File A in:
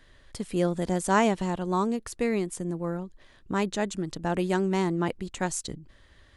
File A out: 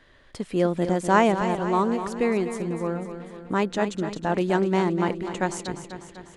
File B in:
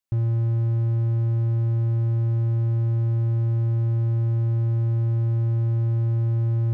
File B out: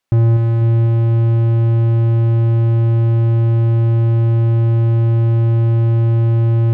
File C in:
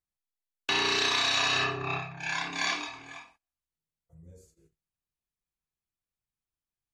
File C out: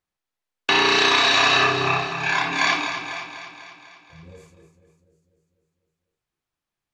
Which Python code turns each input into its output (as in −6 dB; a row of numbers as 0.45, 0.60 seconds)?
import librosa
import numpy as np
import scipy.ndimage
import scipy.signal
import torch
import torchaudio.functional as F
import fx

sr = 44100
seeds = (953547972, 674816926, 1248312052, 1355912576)

p1 = fx.lowpass(x, sr, hz=2700.0, slope=6)
p2 = fx.low_shelf(p1, sr, hz=140.0, db=-9.5)
p3 = p2 + fx.echo_feedback(p2, sr, ms=248, feedback_pct=58, wet_db=-10, dry=0)
y = p3 * 10.0 ** (-6 / 20.0) / np.max(np.abs(p3))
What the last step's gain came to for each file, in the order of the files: +5.0, +16.5, +12.0 decibels